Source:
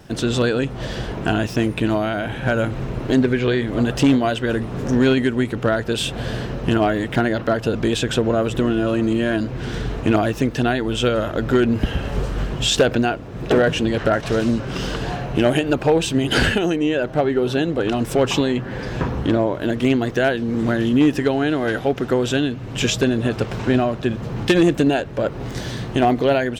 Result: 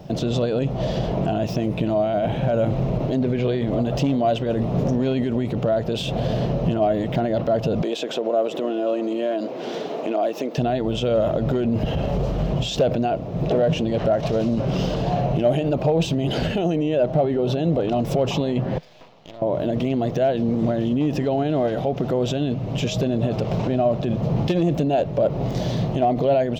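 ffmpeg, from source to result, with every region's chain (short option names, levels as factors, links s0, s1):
-filter_complex "[0:a]asettb=1/sr,asplit=3[s0][s1][s2];[s0]atrim=end=7.824[s3];[s1]atrim=start=7.82:end=10.58,asetpts=PTS-STARTPTS,afade=t=in:d=0.004:c=qsin,afade=t=out:st=2.756:d=0.004:c=qsin,highpass=f=290:w=0.5412,highpass=f=290:w=1.3066,acompressor=threshold=0.0562:ratio=3:attack=3.2:release=140:knee=1:detection=peak[s4];[s2]atrim=start=10.576[s5];[s3][s4]acrossfade=d=0.004:c1=hsin:c2=qsin[s6];[s6][s5]acrossfade=d=0.004:c1=qsin:c2=hsin,asettb=1/sr,asplit=3[s7][s8][s9];[s7]atrim=end=18.784[s10];[s8]atrim=start=18.78:end=19.42,asetpts=PTS-STARTPTS,afade=t=in:d=0.004:c=qsin,afade=t=out:st=0.636:d=0.004:c=qsin,lowpass=f=4400:w=0.5412,lowpass=f=4400:w=1.3066,aderivative,aeval=exprs='max(val(0),0)':c=same[s11];[s9]atrim=start=19.416[s12];[s10][s11]acrossfade=d=0.004:c1=hsin:c2=qsin[s13];[s13][s12]acrossfade=d=0.004:c1=qsin:c2=hsin,equalizer=f=8500:w=2.7:g=-7,alimiter=limit=0.126:level=0:latency=1:release=35,equalizer=f=160:t=o:w=0.67:g=10,equalizer=f=630:t=o:w=0.67:g=11,equalizer=f=1600:t=o:w=0.67:g=-10,equalizer=f=10000:t=o:w=0.67:g=-9"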